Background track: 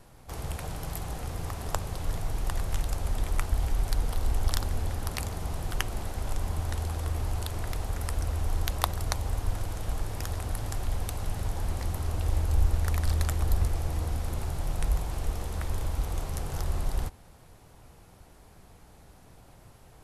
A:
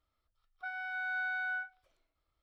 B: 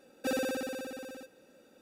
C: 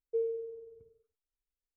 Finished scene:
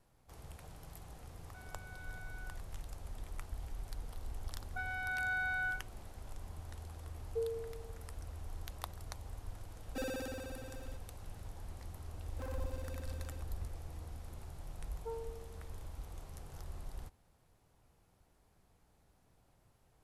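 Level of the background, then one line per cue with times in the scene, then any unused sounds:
background track -16.5 dB
0.91 s: add A -17.5 dB
4.13 s: add A -0.5 dB
7.22 s: add C -5 dB
9.71 s: add B -8 dB
12.15 s: add B -9.5 dB + transformer saturation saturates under 1.1 kHz
14.92 s: add C -10.5 dB + loudspeaker Doppler distortion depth 0.27 ms

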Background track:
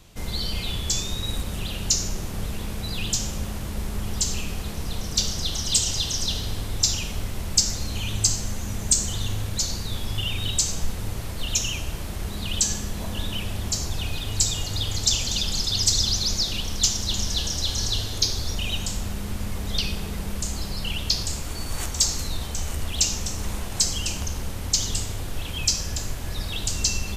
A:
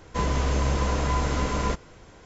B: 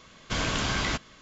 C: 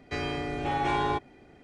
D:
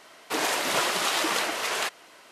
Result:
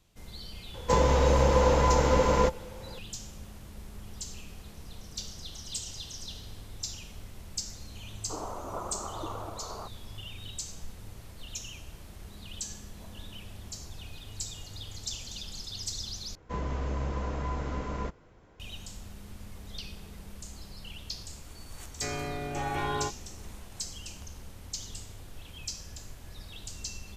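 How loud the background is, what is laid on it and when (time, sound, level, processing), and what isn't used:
background track -15.5 dB
0.74 s: add A -0.5 dB + small resonant body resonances 520/870 Hz, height 15 dB, ringing for 60 ms
7.99 s: add D -9 dB + steep low-pass 1.3 kHz 72 dB/octave
16.35 s: replace with A -8 dB + treble shelf 2.9 kHz -11.5 dB
21.90 s: add C -5 dB + doubling 21 ms -4.5 dB
not used: B

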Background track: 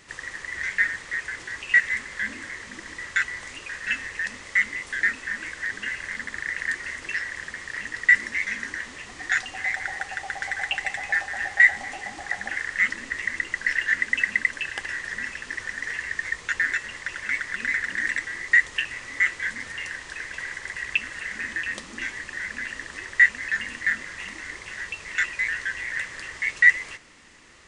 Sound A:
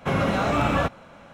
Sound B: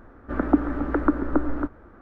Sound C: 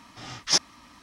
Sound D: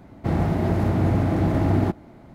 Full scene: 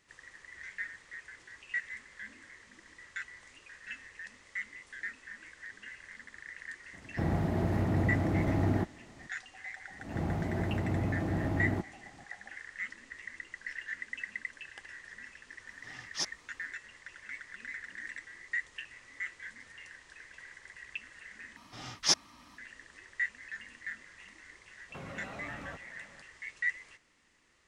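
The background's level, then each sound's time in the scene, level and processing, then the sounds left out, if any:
background track -17 dB
6.93 s: add D -8.5 dB
9.90 s: add D -11.5 dB + swell ahead of each attack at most 120 dB/s
15.67 s: add C -13 dB
21.56 s: replace with C -4.5 dB
24.89 s: add A -12 dB + compression 4:1, threshold -31 dBFS
not used: B

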